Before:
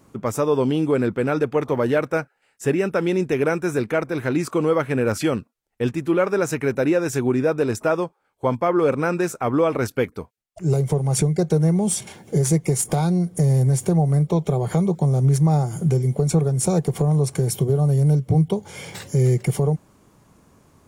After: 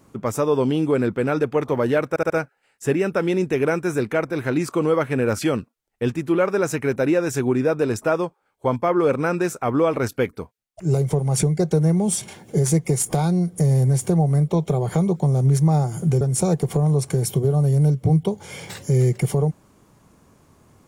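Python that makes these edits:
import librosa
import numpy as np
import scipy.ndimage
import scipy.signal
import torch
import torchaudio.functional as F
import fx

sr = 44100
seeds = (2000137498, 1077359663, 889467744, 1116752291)

y = fx.edit(x, sr, fx.stutter(start_s=2.09, slice_s=0.07, count=4),
    fx.cut(start_s=16.0, length_s=0.46), tone=tone)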